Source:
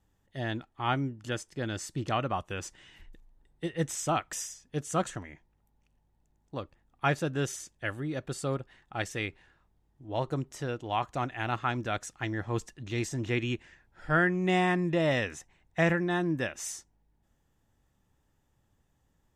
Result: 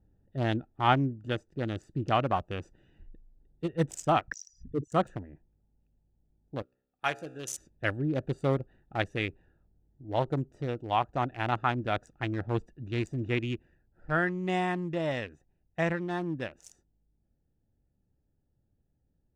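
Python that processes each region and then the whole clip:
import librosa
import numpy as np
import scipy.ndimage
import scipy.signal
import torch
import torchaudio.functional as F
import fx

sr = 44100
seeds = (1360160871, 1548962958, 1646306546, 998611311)

y = fx.chain(x, sr, fx.envelope_sharpen(power=3.0),
    fx.lowpass(hz=3600.0, slope=12),
    fx.env_flatten(amount_pct=50), at=(4.28, 4.92))
y = fx.chain(y, sr, fx.tilt_eq(slope=4.0),
    fx.comb_fb(f0_hz=63.0, decay_s=0.85, harmonics='all', damping=0.0, mix_pct=60), at=(6.62, 7.57))
y = fx.wiener(y, sr, points=41)
y = fx.rider(y, sr, range_db=10, speed_s=2.0)
y = fx.dynamic_eq(y, sr, hz=790.0, q=1.3, threshold_db=-40.0, ratio=4.0, max_db=3)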